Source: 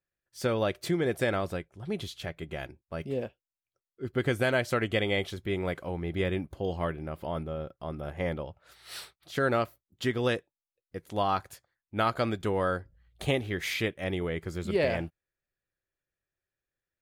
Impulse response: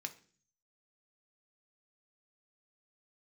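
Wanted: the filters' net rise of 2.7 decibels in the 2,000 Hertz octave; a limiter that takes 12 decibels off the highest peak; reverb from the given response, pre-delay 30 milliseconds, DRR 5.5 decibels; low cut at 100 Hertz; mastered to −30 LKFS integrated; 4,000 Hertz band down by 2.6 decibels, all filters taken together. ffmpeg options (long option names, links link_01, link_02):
-filter_complex "[0:a]highpass=100,equalizer=frequency=2000:width_type=o:gain=4.5,equalizer=frequency=4000:width_type=o:gain=-5.5,alimiter=limit=-23dB:level=0:latency=1,asplit=2[link_01][link_02];[1:a]atrim=start_sample=2205,adelay=30[link_03];[link_02][link_03]afir=irnorm=-1:irlink=0,volume=-4dB[link_04];[link_01][link_04]amix=inputs=2:normalize=0,volume=5dB"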